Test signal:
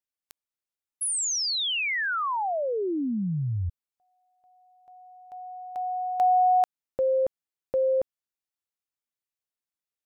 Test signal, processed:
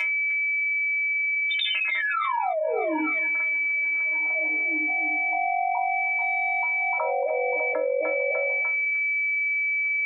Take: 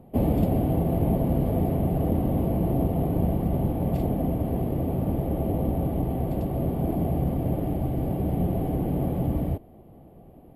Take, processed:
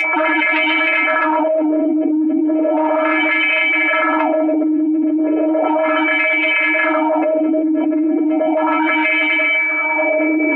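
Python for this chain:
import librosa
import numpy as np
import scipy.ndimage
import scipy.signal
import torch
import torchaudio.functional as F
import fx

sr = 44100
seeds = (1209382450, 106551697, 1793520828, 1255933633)

y = fx.sine_speech(x, sr)
y = y + 10.0 ** (-34.0 / 20.0) * np.sin(2.0 * np.pi * 2300.0 * np.arange(len(y)) / sr)
y = fx.stiff_resonator(y, sr, f0_hz=310.0, decay_s=0.27, stiffness=0.008)
y = 10.0 ** (-27.5 / 20.0) * np.tanh(y / 10.0 ** (-27.5 / 20.0))
y = fx.echo_tape(y, sr, ms=300, feedback_pct=57, wet_db=-15.0, lp_hz=2800.0, drive_db=32.0, wow_cents=18)
y = fx.filter_lfo_highpass(y, sr, shape='sine', hz=0.35, low_hz=270.0, high_hz=2500.0, q=2.7)
y = y + 0.79 * np.pad(y, (int(6.6 * sr / 1000.0), 0))[:len(y)]
y = fx.dynamic_eq(y, sr, hz=2000.0, q=0.88, threshold_db=-59.0, ratio=4.0, max_db=-5)
y = fx.env_flatten(y, sr, amount_pct=100)
y = y * librosa.db_to_amplitude(2.5)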